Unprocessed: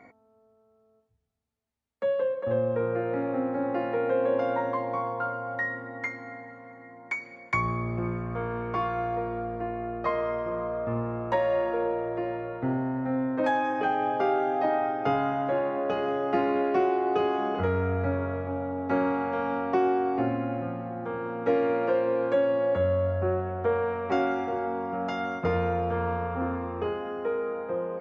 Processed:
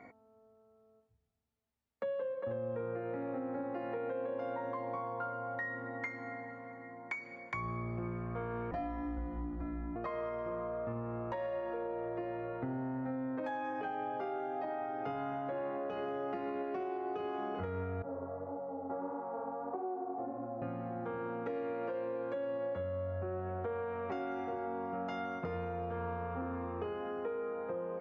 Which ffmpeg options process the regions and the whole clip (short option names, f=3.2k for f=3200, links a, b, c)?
-filter_complex "[0:a]asettb=1/sr,asplit=3[a][b][c];[a]atrim=end=8.714[d];[b]atrim=start=8.71:end=9.96,asetpts=PTS-STARTPTS,afade=t=in:d=0.004:c=qsin,afade=t=out:st=1.246:d=0.004:c=qsin,asplit=2[e][f];[f]adelay=28,volume=-13dB[g];[e][g]amix=inputs=2:normalize=0,atrim=end_sample=55125,afreqshift=-410[h];[c]atrim=start=9.956[i];[d][h]acrossfade=d=0.004:c1=hsin:c2=qsin[j];[j][i]acrossfade=d=0.004:c1=qsin:c2=hsin,asettb=1/sr,asplit=3[k][l][m];[k]atrim=end=18.024[n];[l]atrim=start=18.02:end=20.62,asetpts=PTS-STARTPTS,afade=t=in:d=0.004:c=qsin,afade=t=out:st=2.596:d=0.004:c=qsin,lowpass=f=1k:w=0.5412,lowpass=f=1k:w=1.3066,aemphasis=mode=production:type=riaa,flanger=delay=16:depth=7.2:speed=1.6[o];[m]atrim=start=20.616[p];[n][o]acrossfade=d=0.004:c1=hsin:c2=qsin[q];[q][p]acrossfade=d=0.004:c1=qsin:c2=hsin,highshelf=f=4.5k:g=-6,alimiter=limit=-21dB:level=0:latency=1:release=183,acompressor=threshold=-36dB:ratio=3,volume=-1.5dB"